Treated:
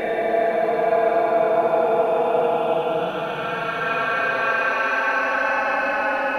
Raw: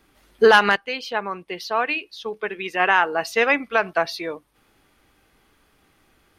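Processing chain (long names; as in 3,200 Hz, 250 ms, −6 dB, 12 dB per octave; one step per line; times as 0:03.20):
delay that swaps between a low-pass and a high-pass 295 ms, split 840 Hz, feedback 68%, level −2.5 dB
extreme stretch with random phases 46×, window 0.05 s, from 0:04.85
level +8.5 dB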